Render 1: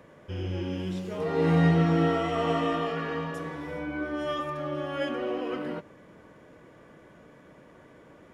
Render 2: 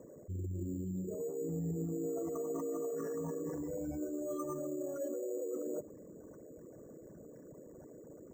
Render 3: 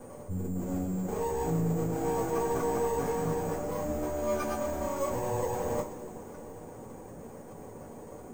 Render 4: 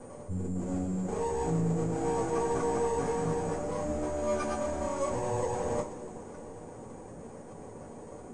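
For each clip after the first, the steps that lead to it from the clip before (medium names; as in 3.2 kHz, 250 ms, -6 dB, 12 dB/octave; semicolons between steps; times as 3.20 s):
resonances exaggerated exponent 3; reverse; compression 6:1, threshold -36 dBFS, peak gain reduction 16.5 dB; reverse; sample-and-hold 6×
half-wave rectifier; whistle 8.9 kHz -69 dBFS; two-slope reverb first 0.23 s, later 3.2 s, from -21 dB, DRR -7.5 dB; trim +5 dB
brick-wall FIR low-pass 11 kHz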